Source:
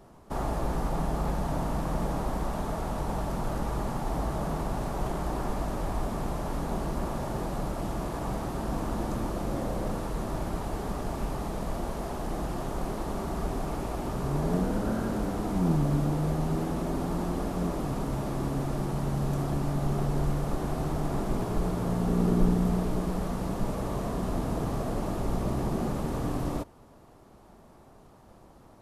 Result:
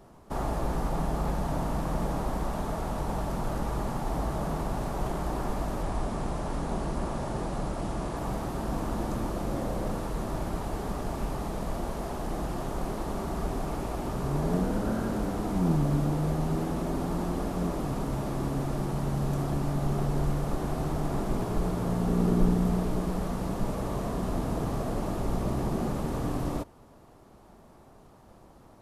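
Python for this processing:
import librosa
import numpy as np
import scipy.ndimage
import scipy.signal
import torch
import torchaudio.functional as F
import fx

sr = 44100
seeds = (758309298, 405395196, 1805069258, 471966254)

y = fx.steep_lowpass(x, sr, hz=11000.0, slope=72, at=(5.83, 8.17))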